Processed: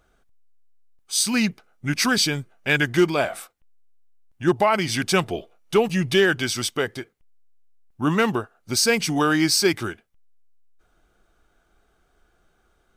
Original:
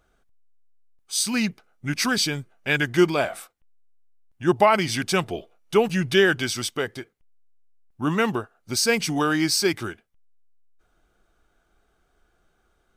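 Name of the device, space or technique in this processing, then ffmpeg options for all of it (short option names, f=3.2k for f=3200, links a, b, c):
limiter into clipper: -filter_complex "[0:a]asettb=1/sr,asplit=3[a][b][c];[a]atrim=end=5.814[d];[b]atrim=start=5.81:end=6.22,asetpts=PTS-STARTPTS,afade=t=in:d=0.004:c=qsin,afade=t=out:st=0.406:d=0.004:c=qsin,bandreject=f=1.5k:w=6.2[e];[c]atrim=start=6.216[f];[d][e]acrossfade=d=0.004:c1=hsin:c2=qsin[g];[g][f]acrossfade=d=0.004:c1=qsin:c2=hsin,alimiter=limit=-10dB:level=0:latency=1:release=417,asoftclip=type=hard:threshold=-12dB,volume=2.5dB"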